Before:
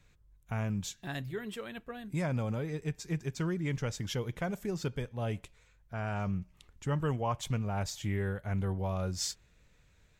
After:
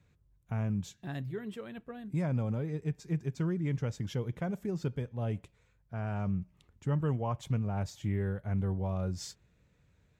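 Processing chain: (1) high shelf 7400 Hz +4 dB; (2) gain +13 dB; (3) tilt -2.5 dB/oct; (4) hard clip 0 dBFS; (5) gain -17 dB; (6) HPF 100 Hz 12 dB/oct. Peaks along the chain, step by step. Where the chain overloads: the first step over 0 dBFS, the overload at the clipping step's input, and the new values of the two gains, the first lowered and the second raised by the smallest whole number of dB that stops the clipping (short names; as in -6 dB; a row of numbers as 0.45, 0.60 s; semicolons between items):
-19.0, -6.0, -3.0, -3.0, -20.0, -19.5 dBFS; no overload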